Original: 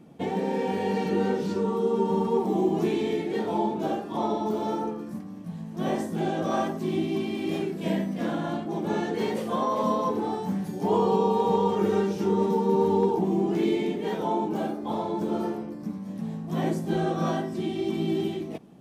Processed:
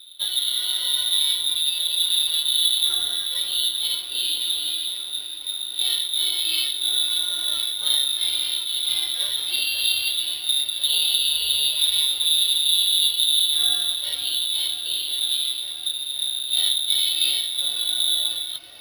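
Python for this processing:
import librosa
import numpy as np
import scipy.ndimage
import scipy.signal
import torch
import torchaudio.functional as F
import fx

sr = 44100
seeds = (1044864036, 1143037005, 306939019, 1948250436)

y = fx.median_filter(x, sr, points=25, at=(2.05, 2.89))
y = fx.low_shelf(y, sr, hz=290.0, db=9.5)
y = fx.notch_comb(y, sr, f0_hz=450.0)
y = fx.echo_wet_highpass(y, sr, ms=524, feedback_pct=85, hz=1500.0, wet_db=-9.0)
y = fx.freq_invert(y, sr, carrier_hz=3800)
y = np.repeat(y[::6], 6)[:len(y)]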